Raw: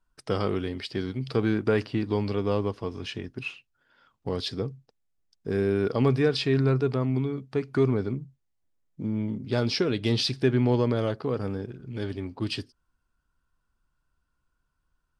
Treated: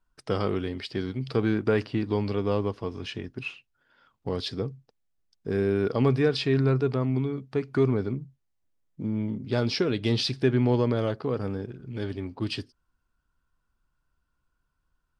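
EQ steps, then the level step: high shelf 7700 Hz -5.5 dB; 0.0 dB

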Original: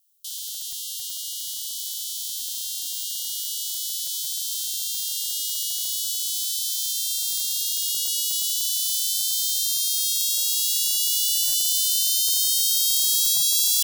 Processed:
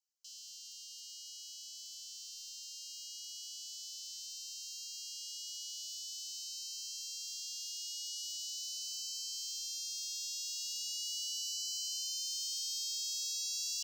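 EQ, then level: air absorption 65 m; fixed phaser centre 2400 Hz, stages 8; -8.0 dB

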